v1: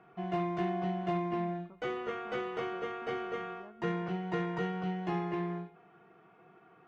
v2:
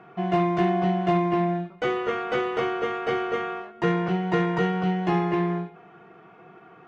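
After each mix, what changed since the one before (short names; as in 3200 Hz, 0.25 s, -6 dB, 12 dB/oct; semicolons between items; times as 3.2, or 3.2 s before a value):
speech: remove Gaussian blur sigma 6.8 samples; background +10.5 dB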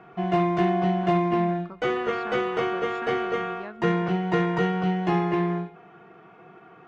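speech +11.5 dB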